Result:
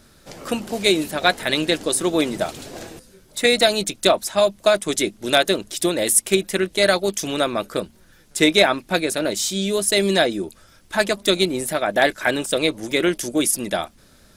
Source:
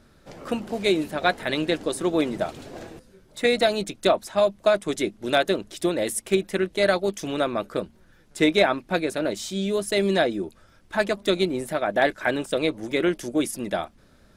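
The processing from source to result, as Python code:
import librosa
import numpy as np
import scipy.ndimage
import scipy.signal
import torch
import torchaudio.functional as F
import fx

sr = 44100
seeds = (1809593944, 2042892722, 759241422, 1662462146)

y = fx.high_shelf(x, sr, hz=3600.0, db=12.0)
y = F.gain(torch.from_numpy(y), 2.5).numpy()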